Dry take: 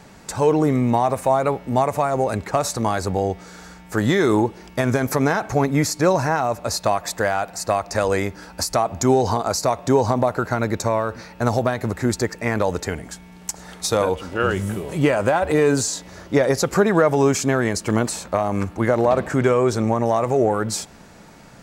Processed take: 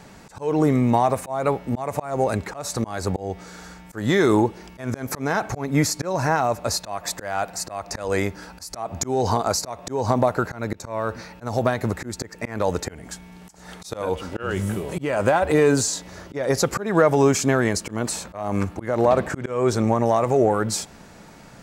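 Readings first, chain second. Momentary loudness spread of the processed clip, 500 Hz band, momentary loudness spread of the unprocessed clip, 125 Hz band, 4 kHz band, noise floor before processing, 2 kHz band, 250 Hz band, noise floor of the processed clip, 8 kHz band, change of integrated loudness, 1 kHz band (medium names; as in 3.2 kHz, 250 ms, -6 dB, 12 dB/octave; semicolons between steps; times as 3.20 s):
14 LU, -3.0 dB, 8 LU, -2.5 dB, -1.5 dB, -45 dBFS, -3.0 dB, -2.5 dB, -46 dBFS, -1.0 dB, -2.5 dB, -3.0 dB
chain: slow attack 229 ms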